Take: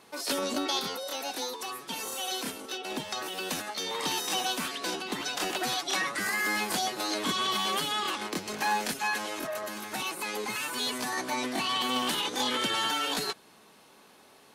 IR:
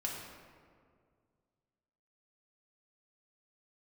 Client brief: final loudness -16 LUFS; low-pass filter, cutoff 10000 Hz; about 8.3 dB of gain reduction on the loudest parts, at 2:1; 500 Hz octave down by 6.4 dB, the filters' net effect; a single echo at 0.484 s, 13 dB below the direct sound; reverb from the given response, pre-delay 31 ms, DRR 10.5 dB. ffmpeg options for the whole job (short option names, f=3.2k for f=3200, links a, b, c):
-filter_complex "[0:a]lowpass=10k,equalizer=f=500:t=o:g=-8.5,acompressor=threshold=-42dB:ratio=2,aecho=1:1:484:0.224,asplit=2[a][b];[1:a]atrim=start_sample=2205,adelay=31[c];[b][c]afir=irnorm=-1:irlink=0,volume=-12.5dB[d];[a][d]amix=inputs=2:normalize=0,volume=22dB"